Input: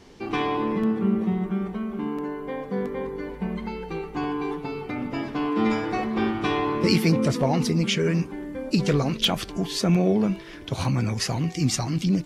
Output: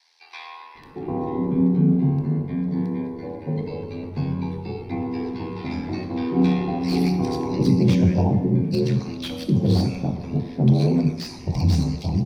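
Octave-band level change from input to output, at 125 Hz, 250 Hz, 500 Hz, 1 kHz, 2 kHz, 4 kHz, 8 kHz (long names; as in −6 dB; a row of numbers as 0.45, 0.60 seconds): +5.5 dB, +2.5 dB, −1.0 dB, −4.0 dB, −7.5 dB, −7.0 dB, can't be measured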